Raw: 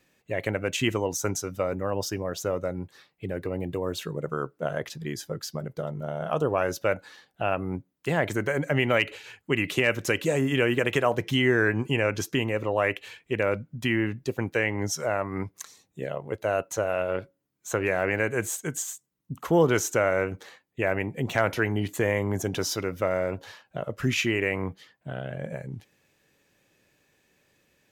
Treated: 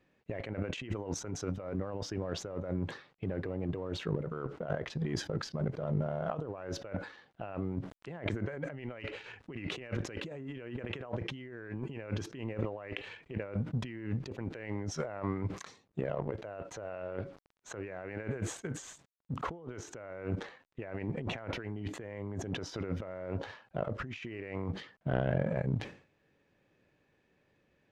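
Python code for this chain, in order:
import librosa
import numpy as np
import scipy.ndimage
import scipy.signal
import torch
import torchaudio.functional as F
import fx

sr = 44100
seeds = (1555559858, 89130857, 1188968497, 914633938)

y = fx.law_mismatch(x, sr, coded='A')
y = fx.over_compress(y, sr, threshold_db=-37.0, ratio=-1.0)
y = fx.spacing_loss(y, sr, db_at_10k=28)
y = fx.sustainer(y, sr, db_per_s=130.0)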